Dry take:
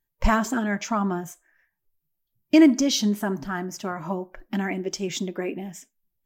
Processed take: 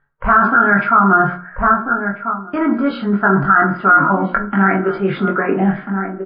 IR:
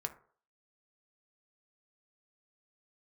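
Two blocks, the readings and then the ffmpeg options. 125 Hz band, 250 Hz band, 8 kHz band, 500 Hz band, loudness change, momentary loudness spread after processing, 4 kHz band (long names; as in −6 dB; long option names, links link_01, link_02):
+11.5 dB, +5.5 dB, below −40 dB, +9.0 dB, +9.5 dB, 8 LU, −8.0 dB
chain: -filter_complex "[0:a]bandreject=frequency=60:width_type=h:width=6,bandreject=frequency=120:width_type=h:width=6,bandreject=frequency=180:width_type=h:width=6,bandreject=frequency=240:width_type=h:width=6,bandreject=frequency=300:width_type=h:width=6,acontrast=54,asplit=2[link_01][link_02];[link_02]adelay=1341,volume=-18dB,highshelf=frequency=4000:gain=-30.2[link_03];[link_01][link_03]amix=inputs=2:normalize=0,areverse,acompressor=threshold=-29dB:ratio=10,areverse,lowpass=frequency=1400:width_type=q:width=13,asplit=2[link_04][link_05];[link_05]adelay=21,volume=-5dB[link_06];[link_04][link_06]amix=inputs=2:normalize=0[link_07];[1:a]atrim=start_sample=2205[link_08];[link_07][link_08]afir=irnorm=-1:irlink=0,alimiter=level_in=16dB:limit=-1dB:release=50:level=0:latency=1,volume=-1dB" -ar 11025 -c:a libmp3lame -b:a 24k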